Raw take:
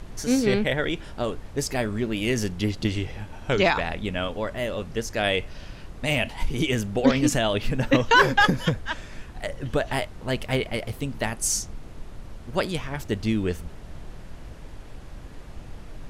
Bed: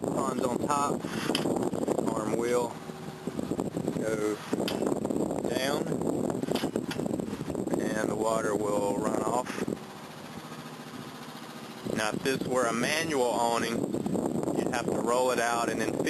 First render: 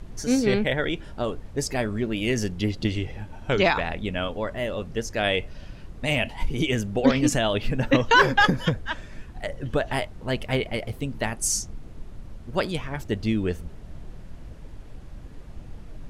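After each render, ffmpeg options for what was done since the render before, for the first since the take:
-af "afftdn=nr=6:nf=-42"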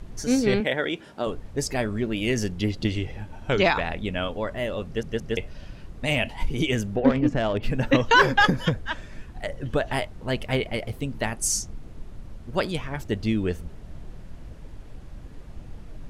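-filter_complex "[0:a]asettb=1/sr,asplit=3[s0][s1][s2];[s0]atrim=end=0.604[s3];[s1]atrim=start=0.6:end=1.27,asetpts=PTS-STARTPTS,afade=t=in:d=0.004:c=qsin,afade=t=out:st=0.666:d=0.004:c=qsin,highpass=200[s4];[s2]atrim=start=1.266[s5];[s3][s4]acrossfade=d=0.004:c1=hsin:c2=qsin[s6];[s6][s5]acrossfade=d=0.004:c1=qsin:c2=hsin,asplit=3[s7][s8][s9];[s7]afade=t=out:st=6.95:d=0.02[s10];[s8]adynamicsmooth=sensitivity=0.5:basefreq=1300,afade=t=in:st=6.95:d=0.02,afade=t=out:st=7.62:d=0.02[s11];[s9]afade=t=in:st=7.62:d=0.02[s12];[s10][s11][s12]amix=inputs=3:normalize=0,asplit=4[s13][s14][s15][s16];[s13]atrim=end=5.032[s17];[s14]atrim=start=4.858:end=5.032[s18];[s15]atrim=start=4.858:end=5.032[s19];[s16]atrim=start=5.368[s20];[s17][s18]acrossfade=d=0.004:c1=hsin:c2=hsin[s21];[s21][s19]acrossfade=d=0.004:c1=hsin:c2=hsin[s22];[s22][s20]acrossfade=d=0.004:c1=hsin:c2=hsin"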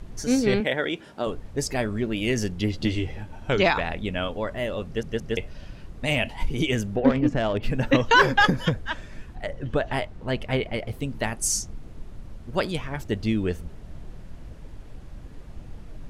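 -filter_complex "[0:a]asettb=1/sr,asplit=3[s0][s1][s2];[s0]atrim=end=2.724[s3];[s1]atrim=start=2.72:end=3.23,asetpts=PTS-STARTPTS,afade=t=in:d=0.004:c=qsin,afade=t=out:st=0.506:d=0.004:c=qsin,asplit=2[s4][s5];[s5]adelay=13,volume=0.501[s6];[s4][s6]amix=inputs=2:normalize=0,atrim=end_sample=22491[s7];[s2]atrim=start=3.226[s8];[s3][s7]acrossfade=d=0.004:c1=hsin:c2=qsin[s9];[s9][s8]acrossfade=d=0.004:c1=qsin:c2=hsin,asettb=1/sr,asplit=3[s10][s11][s12];[s10]atrim=end=9.354[s13];[s11]atrim=start=9.35:end=10.91,asetpts=PTS-STARTPTS,afade=t=in:d=0.004:c=qsin,afade=t=out:st=1.556:d=0.004:c=qsin,highshelf=f=6000:g=-9.5[s14];[s12]atrim=start=10.906[s15];[s13][s14]acrossfade=d=0.004:c1=hsin:c2=qsin[s16];[s16][s15]acrossfade=d=0.004:c1=qsin:c2=hsin"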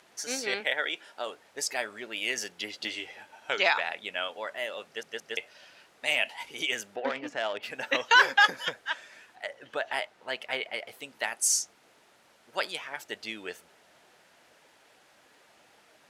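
-af "highpass=850,equalizer=f=1100:t=o:w=0.25:g=-5.5"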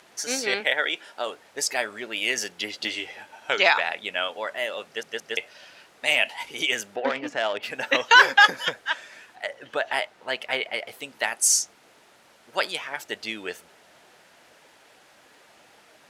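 -af "volume=1.88"

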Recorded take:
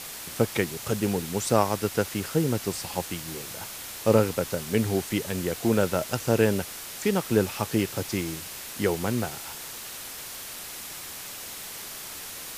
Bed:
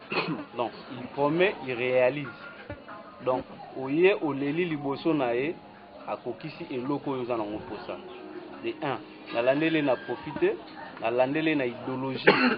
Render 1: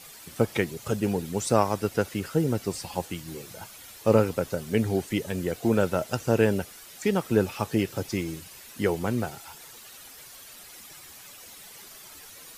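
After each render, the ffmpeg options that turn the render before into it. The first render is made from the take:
-af "afftdn=nr=11:nf=-39"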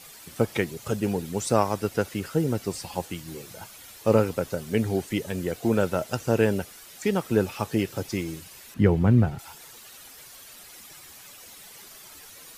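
-filter_complex "[0:a]asettb=1/sr,asplit=3[s0][s1][s2];[s0]atrim=end=8.744[s3];[s1]atrim=start=8.74:end=9.39,asetpts=PTS-STARTPTS,afade=t=in:d=0.004:c=qsin,afade=t=out:st=0.646:d=0.004:c=qsin,bass=f=250:g=14,treble=f=4000:g=-14[s4];[s2]atrim=start=9.386[s5];[s3][s4]acrossfade=d=0.004:c1=hsin:c2=qsin[s6];[s6][s5]acrossfade=d=0.004:c1=qsin:c2=hsin"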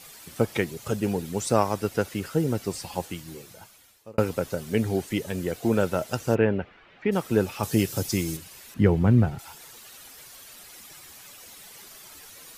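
-filter_complex "[0:a]asplit=3[s0][s1][s2];[s0]afade=t=out:st=6.34:d=0.02[s3];[s1]lowpass=f=2700:w=0.5412,lowpass=f=2700:w=1.3066,afade=t=in:st=6.34:d=0.02,afade=t=out:st=7.11:d=0.02[s4];[s2]afade=t=in:st=7.11:d=0.02[s5];[s3][s4][s5]amix=inputs=3:normalize=0,asettb=1/sr,asplit=3[s6][s7][s8];[s6]atrim=end=7.634[s9];[s7]atrim=start=7.63:end=8.37,asetpts=PTS-STARTPTS,afade=t=in:d=0.004:c=qsin,afade=t=out:st=0.736:d=0.004:c=qsin,bass=f=250:g=5,treble=f=4000:g=10[s10];[s8]atrim=start=8.366[s11];[s9][s10]acrossfade=d=0.004:c1=hsin:c2=qsin[s12];[s12][s11]acrossfade=d=0.004:c1=qsin:c2=hsin,asplit=2[s13][s14];[s13]atrim=end=4.18,asetpts=PTS-STARTPTS,afade=t=out:st=3.06:d=1.12[s15];[s14]atrim=start=4.18,asetpts=PTS-STARTPTS,afade=t=in:d=0.004:c=hsin[s16];[s15][s16]concat=n=2:v=0:a=1"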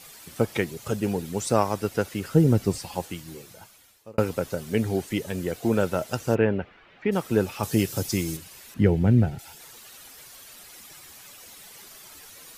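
-filter_complex "[0:a]asettb=1/sr,asplit=3[s0][s1][s2];[s0]atrim=end=2.294[s3];[s1]atrim=start=2.29:end=2.78,asetpts=PTS-STARTPTS,afade=t=in:d=0.004:c=qsin,afade=t=out:st=0.486:d=0.004:c=qsin,lowshelf=f=320:g=10[s4];[s2]atrim=start=2.776[s5];[s3][s4]acrossfade=d=0.004:c1=hsin:c2=qsin[s6];[s6][s5]acrossfade=d=0.004:c1=qsin:c2=hsin,asettb=1/sr,asplit=3[s7][s8][s9];[s7]atrim=end=8.844[s10];[s8]atrim=start=8.84:end=9.6,asetpts=PTS-STARTPTS,afade=t=in:d=0.004:c=qsin,afade=t=out:st=0.756:d=0.004:c=qsin,equalizer=f=1100:w=3.4:g=-13[s11];[s9]atrim=start=9.596[s12];[s10][s11]acrossfade=d=0.004:c1=hsin:c2=qsin[s13];[s13][s12]acrossfade=d=0.004:c1=qsin:c2=hsin"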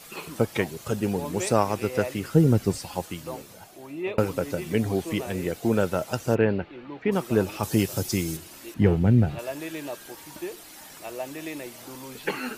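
-filter_complex "[1:a]volume=0.316[s0];[0:a][s0]amix=inputs=2:normalize=0"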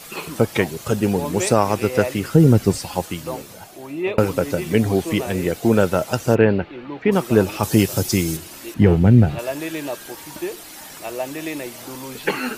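-af "volume=2.24,alimiter=limit=0.794:level=0:latency=1"

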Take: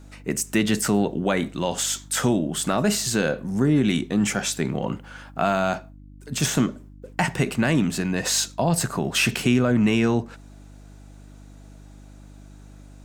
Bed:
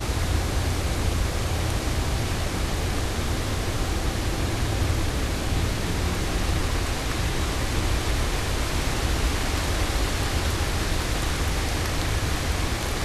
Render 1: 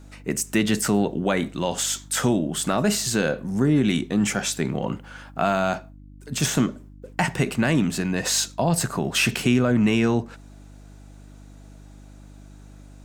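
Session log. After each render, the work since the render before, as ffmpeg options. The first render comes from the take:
-af anull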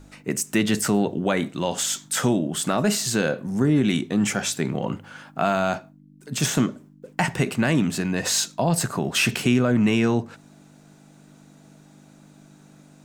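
-af "bandreject=f=50:t=h:w=4,bandreject=f=100:t=h:w=4"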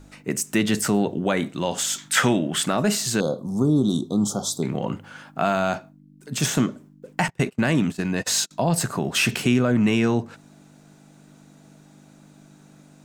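-filter_complex "[0:a]asettb=1/sr,asplit=3[s0][s1][s2];[s0]atrim=end=1.984[s3];[s1]atrim=start=1.98:end=2.66,asetpts=PTS-STARTPTS,afade=t=in:d=0.004:c=qsin,afade=t=out:st=0.676:d=0.004:c=qsin,equalizer=f=2000:t=o:w=1.7:g=11.5[s4];[s2]atrim=start=2.656[s5];[s3][s4]acrossfade=d=0.004:c1=hsin:c2=qsin[s6];[s6][s5]acrossfade=d=0.004:c1=qsin:c2=hsin,asettb=1/sr,asplit=3[s7][s8][s9];[s7]atrim=end=3.204[s10];[s8]atrim=start=3.2:end=4.63,asetpts=PTS-STARTPTS,afade=t=in:d=0.004:c=qsin,afade=t=out:st=1.426:d=0.004:c=qsin,asuperstop=centerf=2100:order=12:qfactor=0.96[s11];[s9]atrim=start=4.626[s12];[s10][s11]acrossfade=d=0.004:c1=hsin:c2=qsin[s13];[s13][s12]acrossfade=d=0.004:c1=qsin:c2=hsin,asettb=1/sr,asplit=3[s14][s15][s16];[s14]atrim=end=7.284[s17];[s15]atrim=start=7.28:end=8.51,asetpts=PTS-STARTPTS,afade=t=in:d=0.004:c=qsin,afade=t=out:st=1.226:d=0.004:c=qsin,agate=range=0.0316:threshold=0.0398:ratio=16:release=100:detection=peak[s18];[s16]atrim=start=8.506[s19];[s17][s18]acrossfade=d=0.004:c1=hsin:c2=qsin[s20];[s20][s19]acrossfade=d=0.004:c1=qsin:c2=hsin"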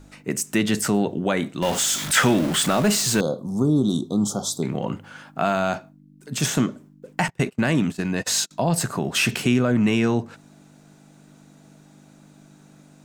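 -filter_complex "[0:a]asettb=1/sr,asplit=3[s0][s1][s2];[s0]atrim=end=1.624[s3];[s1]atrim=start=1.62:end=3.21,asetpts=PTS-STARTPTS,afade=t=in:d=0.004:c=qsin,afade=t=out:st=1.586:d=0.004:c=qsin,aeval=exprs='val(0)+0.5*0.0596*sgn(val(0))':c=same[s4];[s2]atrim=start=3.206[s5];[s3][s4]acrossfade=d=0.004:c1=hsin:c2=qsin[s6];[s6][s5]acrossfade=d=0.004:c1=qsin:c2=hsin"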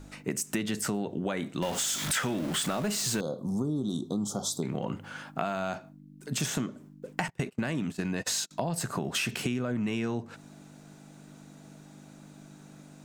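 -af "acompressor=threshold=0.0398:ratio=6"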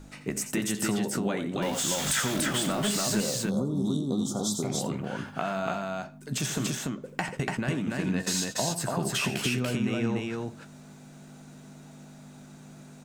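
-filter_complex "[0:a]asplit=2[s0][s1];[s1]adelay=15,volume=0.224[s2];[s0][s2]amix=inputs=2:normalize=0,aecho=1:1:87.46|288.6:0.282|0.794"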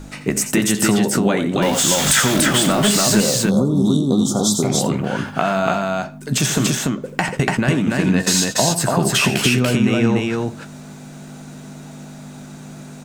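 -af "volume=3.98,alimiter=limit=0.891:level=0:latency=1"

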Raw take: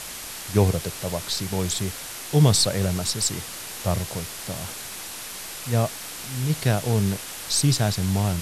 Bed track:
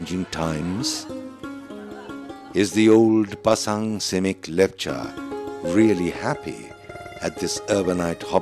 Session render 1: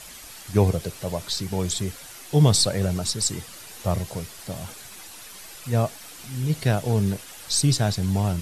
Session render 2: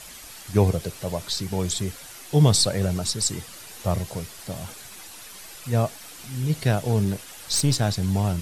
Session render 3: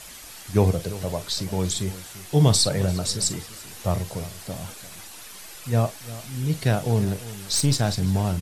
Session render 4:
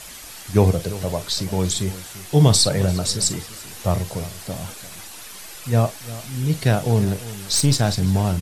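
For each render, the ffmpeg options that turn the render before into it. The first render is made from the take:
-af "afftdn=nr=9:nf=-36"
-filter_complex "[0:a]asettb=1/sr,asplit=3[s0][s1][s2];[s0]atrim=end=7.044[s3];[s1]atrim=start=7.04:end=7.91,asetpts=PTS-STARTPTS,afade=t=in:d=0.004:c=qsin,afade=t=out:st=0.866:d=0.004:c=qsin,aeval=exprs='clip(val(0),-1,0.0841)':c=same[s4];[s2]atrim=start=7.906[s5];[s3][s4]acrossfade=d=0.004:c1=hsin:c2=qsin[s6];[s6][s5]acrossfade=d=0.004:c1=qsin:c2=hsin"
-filter_complex "[0:a]asplit=2[s0][s1];[s1]adelay=43,volume=0.211[s2];[s0][s2]amix=inputs=2:normalize=0,asplit=2[s3][s4];[s4]adelay=344,volume=0.158,highshelf=f=4000:g=-7.74[s5];[s3][s5]amix=inputs=2:normalize=0"
-af "volume=1.5,alimiter=limit=0.794:level=0:latency=1"

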